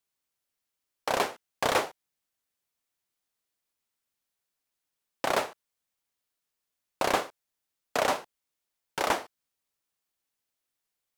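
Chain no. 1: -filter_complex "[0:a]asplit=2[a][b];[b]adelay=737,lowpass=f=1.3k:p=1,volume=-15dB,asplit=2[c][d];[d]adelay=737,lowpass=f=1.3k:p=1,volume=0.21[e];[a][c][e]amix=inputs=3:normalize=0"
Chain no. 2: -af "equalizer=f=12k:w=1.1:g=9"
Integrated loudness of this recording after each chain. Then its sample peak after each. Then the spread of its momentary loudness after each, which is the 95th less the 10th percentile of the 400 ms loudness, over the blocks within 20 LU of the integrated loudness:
-30.5, -30.0 LUFS; -11.0, -8.5 dBFS; 19, 12 LU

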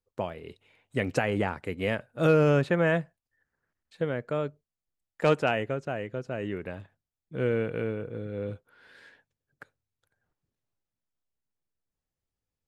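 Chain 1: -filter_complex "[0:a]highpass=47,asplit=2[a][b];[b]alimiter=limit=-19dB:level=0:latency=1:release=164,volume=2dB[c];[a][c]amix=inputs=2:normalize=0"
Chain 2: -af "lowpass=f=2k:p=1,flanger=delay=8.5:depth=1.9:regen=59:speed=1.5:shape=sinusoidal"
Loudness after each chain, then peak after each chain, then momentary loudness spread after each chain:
-24.0, -33.5 LUFS; -6.5, -14.5 dBFS; 12, 13 LU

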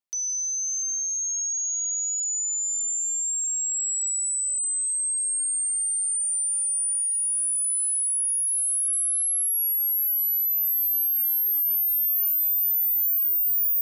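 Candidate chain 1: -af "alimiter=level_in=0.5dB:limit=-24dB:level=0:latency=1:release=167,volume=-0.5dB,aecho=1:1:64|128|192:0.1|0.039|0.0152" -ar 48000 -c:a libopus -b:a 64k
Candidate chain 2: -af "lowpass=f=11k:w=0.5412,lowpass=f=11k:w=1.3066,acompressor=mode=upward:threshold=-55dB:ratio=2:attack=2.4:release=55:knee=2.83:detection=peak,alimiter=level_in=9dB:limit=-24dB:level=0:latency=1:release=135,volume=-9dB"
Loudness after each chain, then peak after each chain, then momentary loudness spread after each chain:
-24.0, -33.0 LUFS; -22.5, -33.0 dBFS; 0, 1 LU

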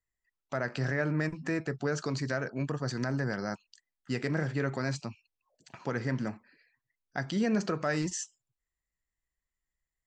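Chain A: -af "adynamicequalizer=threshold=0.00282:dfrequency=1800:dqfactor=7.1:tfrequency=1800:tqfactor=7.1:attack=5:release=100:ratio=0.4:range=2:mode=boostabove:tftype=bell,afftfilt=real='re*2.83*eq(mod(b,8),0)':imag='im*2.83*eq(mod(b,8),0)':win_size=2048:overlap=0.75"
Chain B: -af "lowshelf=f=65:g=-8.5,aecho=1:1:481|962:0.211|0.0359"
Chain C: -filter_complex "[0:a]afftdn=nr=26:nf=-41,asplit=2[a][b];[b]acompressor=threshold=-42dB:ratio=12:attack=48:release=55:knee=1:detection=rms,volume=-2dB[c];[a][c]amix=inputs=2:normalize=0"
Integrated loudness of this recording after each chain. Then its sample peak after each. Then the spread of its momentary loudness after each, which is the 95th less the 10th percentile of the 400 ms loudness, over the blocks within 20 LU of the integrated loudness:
-38.0, -33.5, -31.5 LUFS; -19.5, -16.5, -16.0 dBFS; 8, 17, 9 LU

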